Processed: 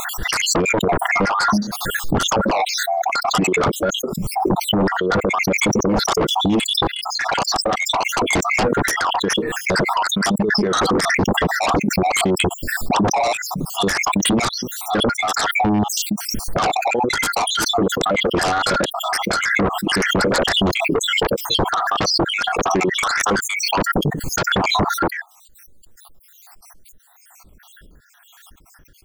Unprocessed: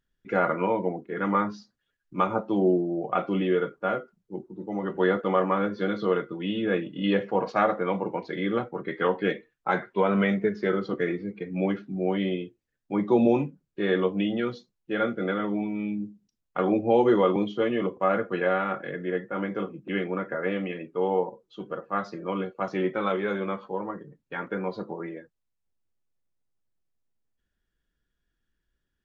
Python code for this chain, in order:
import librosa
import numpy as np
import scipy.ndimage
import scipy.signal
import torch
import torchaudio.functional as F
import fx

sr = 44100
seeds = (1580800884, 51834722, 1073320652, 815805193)

y = fx.spec_dropout(x, sr, seeds[0], share_pct=68)
y = fx.over_compress(y, sr, threshold_db=-36.0, ratio=-1.0)
y = fx.fold_sine(y, sr, drive_db=18, ceiling_db=-17.0)
y = fx.peak_eq(y, sr, hz=2700.0, db=-10.0, octaves=1.5)
y = fx.pre_swell(y, sr, db_per_s=23.0)
y = y * librosa.db_to_amplitude(4.5)